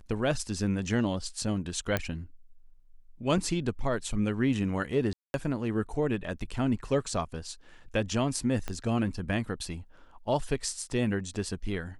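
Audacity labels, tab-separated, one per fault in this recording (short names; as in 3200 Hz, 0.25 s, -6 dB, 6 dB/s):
1.970000	1.970000	pop -13 dBFS
3.380000	3.380000	gap 2.4 ms
5.130000	5.340000	gap 0.211 s
8.680000	8.680000	pop -19 dBFS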